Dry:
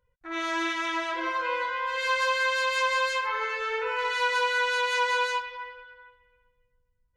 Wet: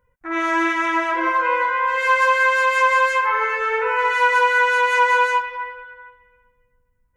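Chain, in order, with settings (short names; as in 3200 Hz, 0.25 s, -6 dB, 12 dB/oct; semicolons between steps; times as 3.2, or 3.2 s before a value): graphic EQ 250/1000/2000/4000 Hz +6/+4/+5/-12 dB; gain +6 dB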